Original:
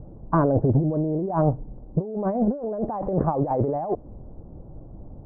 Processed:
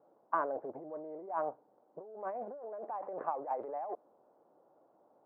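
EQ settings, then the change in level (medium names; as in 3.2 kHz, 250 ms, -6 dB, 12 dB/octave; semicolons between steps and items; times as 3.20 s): high-pass 450 Hz 12 dB/octave; distance through air 390 m; differentiator; +11.5 dB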